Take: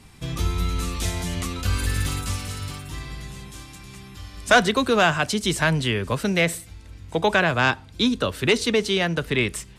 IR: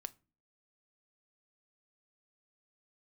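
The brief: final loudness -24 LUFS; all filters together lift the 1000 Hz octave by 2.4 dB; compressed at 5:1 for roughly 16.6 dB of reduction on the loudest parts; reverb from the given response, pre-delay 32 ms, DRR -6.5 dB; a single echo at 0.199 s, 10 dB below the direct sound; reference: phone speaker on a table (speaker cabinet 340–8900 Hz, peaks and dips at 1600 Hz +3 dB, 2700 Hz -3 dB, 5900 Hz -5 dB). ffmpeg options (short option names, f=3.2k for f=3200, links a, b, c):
-filter_complex "[0:a]equalizer=f=1k:t=o:g=3,acompressor=threshold=-29dB:ratio=5,aecho=1:1:199:0.316,asplit=2[a][b];[1:a]atrim=start_sample=2205,adelay=32[c];[b][c]afir=irnorm=-1:irlink=0,volume=10.5dB[d];[a][d]amix=inputs=2:normalize=0,highpass=f=340:w=0.5412,highpass=f=340:w=1.3066,equalizer=f=1.6k:t=q:w=4:g=3,equalizer=f=2.7k:t=q:w=4:g=-3,equalizer=f=5.9k:t=q:w=4:g=-5,lowpass=f=8.9k:w=0.5412,lowpass=f=8.9k:w=1.3066,volume=3dB"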